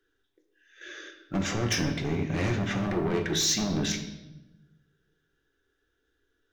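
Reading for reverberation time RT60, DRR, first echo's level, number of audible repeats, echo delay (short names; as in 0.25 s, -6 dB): 1.0 s, 3.5 dB, none, none, none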